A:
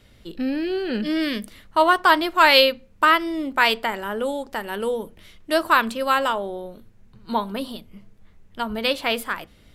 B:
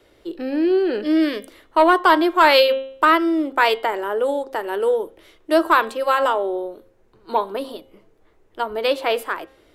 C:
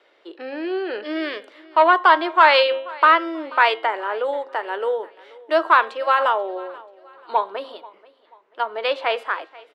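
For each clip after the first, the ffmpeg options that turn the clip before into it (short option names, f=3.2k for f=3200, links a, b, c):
-filter_complex "[0:a]lowshelf=f=270:t=q:w=3:g=-6.5,bandreject=f=267:t=h:w=4,bandreject=f=534:t=h:w=4,bandreject=f=801:t=h:w=4,bandreject=f=1.068k:t=h:w=4,bandreject=f=1.335k:t=h:w=4,bandreject=f=1.602k:t=h:w=4,bandreject=f=1.869k:t=h:w=4,bandreject=f=2.136k:t=h:w=4,bandreject=f=2.403k:t=h:w=4,bandreject=f=2.67k:t=h:w=4,bandreject=f=2.937k:t=h:w=4,bandreject=f=3.204k:t=h:w=4,bandreject=f=3.471k:t=h:w=4,bandreject=f=3.738k:t=h:w=4,bandreject=f=4.005k:t=h:w=4,acrossover=split=240|1400|2700[a][b][c][d];[b]acontrast=86[e];[a][e][c][d]amix=inputs=4:normalize=0,volume=-3dB"
-af "highpass=640,lowpass=3.3k,aecho=1:1:485|970|1455:0.0794|0.0302|0.0115,volume=2dB"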